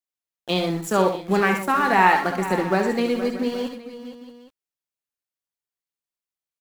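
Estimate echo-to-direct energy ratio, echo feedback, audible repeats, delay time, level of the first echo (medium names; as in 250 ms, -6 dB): -4.5 dB, no regular repeats, 5, 65 ms, -9.0 dB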